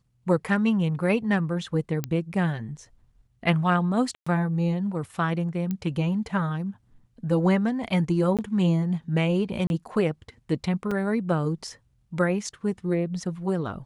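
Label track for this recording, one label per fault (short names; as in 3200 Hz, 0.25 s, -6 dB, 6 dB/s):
2.040000	2.040000	pop -13 dBFS
4.150000	4.260000	gap 0.115 s
5.710000	5.710000	pop -17 dBFS
8.370000	8.390000	gap 17 ms
9.670000	9.700000	gap 31 ms
10.910000	10.910000	gap 4.3 ms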